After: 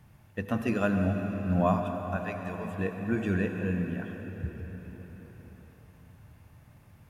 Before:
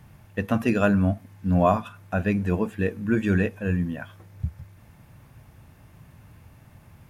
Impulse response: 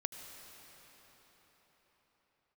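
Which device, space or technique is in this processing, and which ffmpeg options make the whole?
cathedral: -filter_complex "[0:a]asettb=1/sr,asplit=3[a][b][c];[a]atrim=end=2.164[d];[b]atrim=start=2.16:end=2.65,asetpts=PTS-STARTPTS,afade=t=in:d=0.004:c=qsin,afade=t=out:st=0.486:d=0.004:c=qsin,equalizer=f=200:t=o:w=2.4:g=-15[e];[c]atrim=start=2.646[f];[d][e]acrossfade=d=0.004:c1=hsin:c2=qsin[g];[g][f]acrossfade=d=0.004:c1=qsin:c2=hsin[h];[1:a]atrim=start_sample=2205[i];[h][i]afir=irnorm=-1:irlink=0,volume=-5dB"

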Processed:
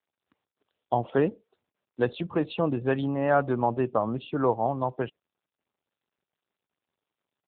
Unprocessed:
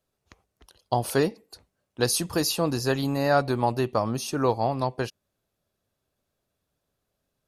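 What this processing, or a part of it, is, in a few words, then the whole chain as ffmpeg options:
mobile call with aggressive noise cancelling: -af "highpass=120,afftdn=nr=19:nf=-40" -ar 8000 -c:a libopencore_amrnb -b:a 7950

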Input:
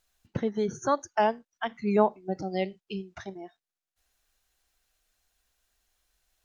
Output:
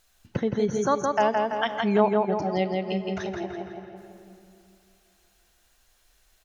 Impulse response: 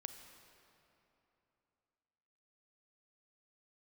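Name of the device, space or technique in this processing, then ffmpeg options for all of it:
ducked reverb: -filter_complex "[0:a]asettb=1/sr,asplit=3[a][b][c];[a]atrim=end=1.334[d];[b]atrim=start=1.33:end=1.76,asetpts=PTS-STARTPTS,afade=t=in:d=0.004:c=qsin,afade=t=out:st=0.426:d=0.004:c=qsin,highshelf=f=2.5k:g=11.5[e];[c]atrim=start=1.756[f];[d][e]acrossfade=d=0.004:c1=hsin:c2=qsin[g];[g][f]acrossfade=d=0.004:c1=qsin:c2=hsin,asplit=2[h][i];[i]adelay=167,lowpass=f=4.4k:p=1,volume=-3.5dB,asplit=2[j][k];[k]adelay=167,lowpass=f=4.4k:p=1,volume=0.5,asplit=2[l][m];[m]adelay=167,lowpass=f=4.4k:p=1,volume=0.5,asplit=2[n][o];[o]adelay=167,lowpass=f=4.4k:p=1,volume=0.5,asplit=2[p][q];[q]adelay=167,lowpass=f=4.4k:p=1,volume=0.5,asplit=2[r][s];[s]adelay=167,lowpass=f=4.4k:p=1,volume=0.5,asplit=2[t][u];[u]adelay=167,lowpass=f=4.4k:p=1,volume=0.5[v];[h][j][l][n][p][r][t][v]amix=inputs=8:normalize=0,asplit=3[w][x][y];[1:a]atrim=start_sample=2205[z];[x][z]afir=irnorm=-1:irlink=0[aa];[y]apad=whole_len=335820[ab];[aa][ab]sidechaincompress=threshold=-38dB:ratio=8:attack=8.3:release=159,volume=9.5dB[ac];[w][ac]amix=inputs=2:normalize=0"

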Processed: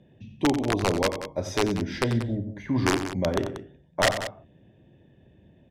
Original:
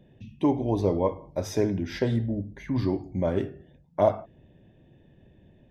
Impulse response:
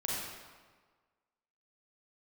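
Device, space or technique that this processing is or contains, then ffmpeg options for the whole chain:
overflowing digital effects unit: -filter_complex "[0:a]highpass=54,asettb=1/sr,asplit=3[a][b][c];[a]atrim=end=2.654[d];[b]atrim=start=2.65:end=3.1,asetpts=PTS-STARTPTS,afade=t=in:d=0.004:c=qsin,afade=t=out:st=0.446:d=0.004:c=qsin,equalizer=f=780:t=o:w=3:g=5[e];[c]atrim=start=3.096[f];[d][e]acrossfade=d=0.004:c1=hsin:c2=qsin[g];[g][f]acrossfade=d=0.004:c1=qsin:c2=hsin,aeval=exprs='(mod(4.73*val(0)+1,2)-1)/4.73':c=same,lowpass=9k,aecho=1:1:90.38|186.6:0.282|0.251"

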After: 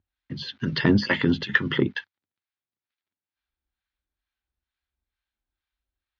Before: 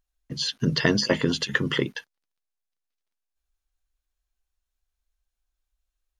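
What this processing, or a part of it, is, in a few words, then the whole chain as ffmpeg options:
guitar amplifier with harmonic tremolo: -filter_complex "[0:a]acrossover=split=770[a][b];[a]aeval=exprs='val(0)*(1-0.7/2+0.7/2*cos(2*PI*2.2*n/s))':c=same[c];[b]aeval=exprs='val(0)*(1-0.7/2-0.7/2*cos(2*PI*2.2*n/s))':c=same[d];[c][d]amix=inputs=2:normalize=0,asoftclip=type=tanh:threshold=-13dB,highpass=86,equalizer=f=90:t=q:w=4:g=8,equalizer=f=140:t=q:w=4:g=-4,equalizer=f=470:t=q:w=4:g=-8,equalizer=f=670:t=q:w=4:g=-8,equalizer=f=1.1k:t=q:w=4:g=-5,equalizer=f=2.8k:t=q:w=4:g=-4,lowpass=f=3.7k:w=0.5412,lowpass=f=3.7k:w=1.3066,volume=7.5dB"

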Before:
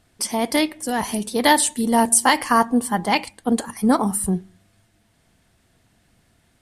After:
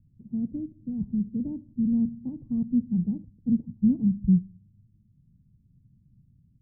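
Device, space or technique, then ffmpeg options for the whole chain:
the neighbour's flat through the wall: -af "lowpass=f=210:w=0.5412,lowpass=f=210:w=1.3066,equalizer=f=140:t=o:w=0.87:g=8"

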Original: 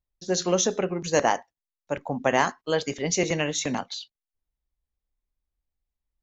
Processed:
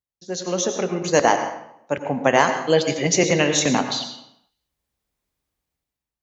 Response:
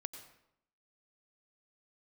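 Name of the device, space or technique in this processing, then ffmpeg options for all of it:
far laptop microphone: -filter_complex "[0:a]asettb=1/sr,asplit=3[a][b][c];[a]atrim=end=2.614[d];[b]atrim=start=2.61:end=3.07,asetpts=PTS-STARTPTS,afade=t=in:d=0.004:c=qsin,afade=t=out:st=0.456:d=0.004:c=qsin,aecho=1:1:5.9:0.68,atrim=end_sample=20286[e];[c]atrim=start=3.066[f];[d][e]acrossfade=d=0.004:c1=hsin:c2=qsin[g];[g][f]acrossfade=d=0.004:c1=qsin:c2=hsin[h];[1:a]atrim=start_sample=2205[i];[h][i]afir=irnorm=-1:irlink=0,highpass=100,dynaudnorm=f=230:g=7:m=16.5dB,volume=-1dB"

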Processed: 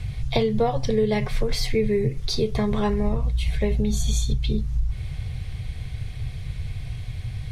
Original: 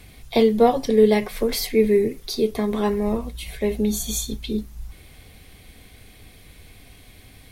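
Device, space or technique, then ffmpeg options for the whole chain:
jukebox: -af "lowpass=6.8k,lowshelf=f=180:t=q:w=3:g=11.5,acompressor=threshold=-23dB:ratio=4,volume=4dB"

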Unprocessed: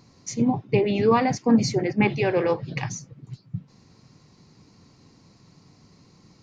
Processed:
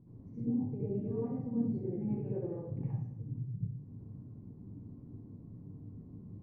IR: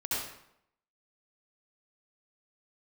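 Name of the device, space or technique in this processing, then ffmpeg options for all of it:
television next door: -filter_complex "[0:a]acompressor=threshold=-41dB:ratio=3,lowpass=280[a];[1:a]atrim=start_sample=2205[b];[a][b]afir=irnorm=-1:irlink=0,volume=1.5dB"

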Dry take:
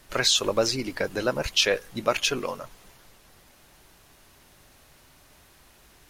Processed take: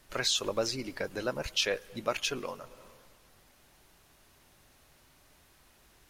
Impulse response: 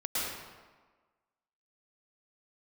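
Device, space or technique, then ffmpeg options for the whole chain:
ducked reverb: -filter_complex "[0:a]asplit=3[a][b][c];[1:a]atrim=start_sample=2205[d];[b][d]afir=irnorm=-1:irlink=0[e];[c]apad=whole_len=268742[f];[e][f]sidechaincompress=threshold=-42dB:ratio=8:attack=7.6:release=221,volume=-17.5dB[g];[a][g]amix=inputs=2:normalize=0,volume=-7.5dB"

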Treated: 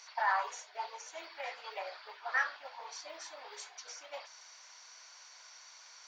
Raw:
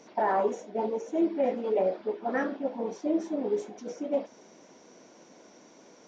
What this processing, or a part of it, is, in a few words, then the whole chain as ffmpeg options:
headphones lying on a table: -af "highpass=f=1.1k:w=0.5412,highpass=f=1.1k:w=1.3066,equalizer=f=4.5k:t=o:w=0.23:g=11,volume=4.5dB"

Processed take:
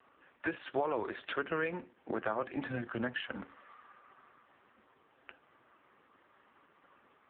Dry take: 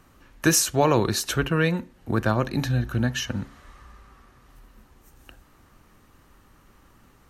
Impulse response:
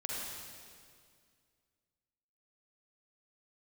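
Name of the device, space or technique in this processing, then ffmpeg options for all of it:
voicemail: -af "highpass=380,lowpass=3.1k,acompressor=threshold=-29dB:ratio=6" -ar 8000 -c:a libopencore_amrnb -b:a 4750

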